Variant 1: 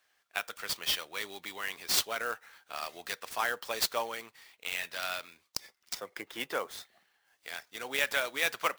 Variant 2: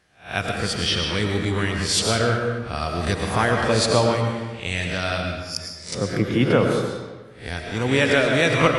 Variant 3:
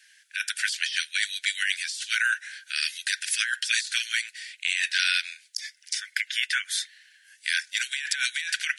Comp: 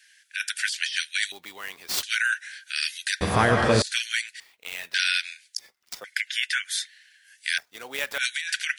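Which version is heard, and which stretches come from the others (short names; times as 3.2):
3
1.32–2.03 from 1
3.21–3.82 from 2
4.4–4.94 from 1
5.59–6.04 from 1
7.58–8.18 from 1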